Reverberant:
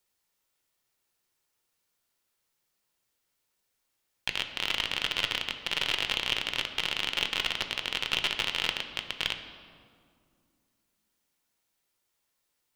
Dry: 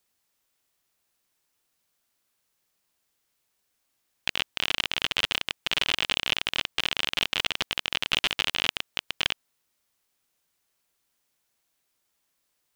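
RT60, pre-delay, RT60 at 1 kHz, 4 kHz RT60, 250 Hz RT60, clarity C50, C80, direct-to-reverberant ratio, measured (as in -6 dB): 2.2 s, 6 ms, 2.1 s, 1.3 s, 3.2 s, 9.0 dB, 10.0 dB, 6.0 dB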